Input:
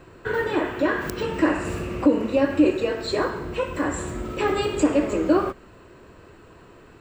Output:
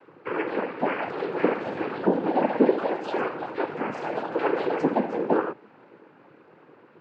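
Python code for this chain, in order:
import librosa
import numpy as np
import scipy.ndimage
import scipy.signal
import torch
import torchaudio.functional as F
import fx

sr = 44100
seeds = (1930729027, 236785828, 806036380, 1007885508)

y = fx.echo_pitch(x, sr, ms=728, semitones=5, count=2, db_per_echo=-6.0)
y = fx.noise_vocoder(y, sr, seeds[0], bands=8)
y = fx.bandpass_edges(y, sr, low_hz=200.0, high_hz=2100.0)
y = F.gain(torch.from_numpy(y), -2.5).numpy()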